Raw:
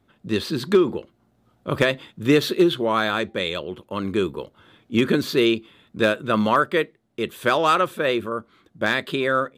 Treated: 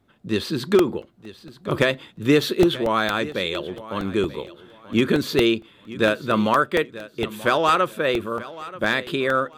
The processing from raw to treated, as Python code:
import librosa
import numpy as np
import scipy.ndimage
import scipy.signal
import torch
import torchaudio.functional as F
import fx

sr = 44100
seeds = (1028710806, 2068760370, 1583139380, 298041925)

p1 = x + fx.echo_feedback(x, sr, ms=933, feedback_pct=26, wet_db=-17, dry=0)
y = fx.buffer_crackle(p1, sr, first_s=0.79, period_s=0.23, block=64, kind='repeat')